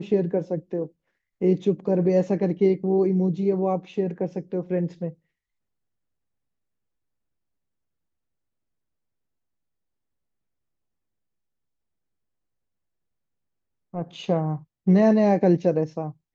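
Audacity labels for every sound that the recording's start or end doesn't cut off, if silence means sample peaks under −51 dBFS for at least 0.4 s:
1.410000	5.140000	sound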